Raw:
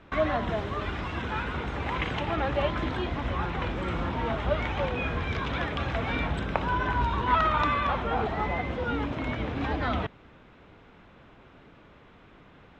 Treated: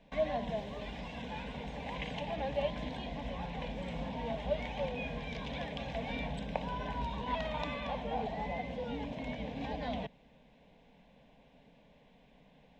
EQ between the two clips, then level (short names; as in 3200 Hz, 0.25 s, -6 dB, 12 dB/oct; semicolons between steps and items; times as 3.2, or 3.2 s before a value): fixed phaser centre 350 Hz, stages 6; -5.0 dB